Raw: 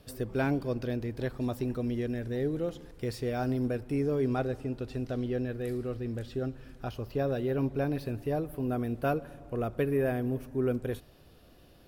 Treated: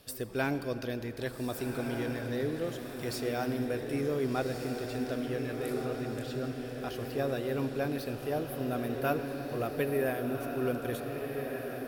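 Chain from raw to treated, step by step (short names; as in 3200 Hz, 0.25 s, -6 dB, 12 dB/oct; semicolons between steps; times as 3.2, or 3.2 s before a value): tilt +2 dB/oct; diffused feedback echo 1.533 s, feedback 50%, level -5 dB; on a send at -12 dB: reverb RT60 3.5 s, pre-delay 40 ms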